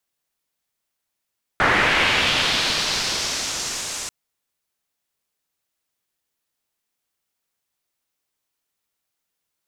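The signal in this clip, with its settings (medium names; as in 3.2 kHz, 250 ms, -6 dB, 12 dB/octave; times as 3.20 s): swept filtered noise white, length 2.49 s lowpass, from 1.5 kHz, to 7.4 kHz, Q 1.8, linear, gain ramp -19.5 dB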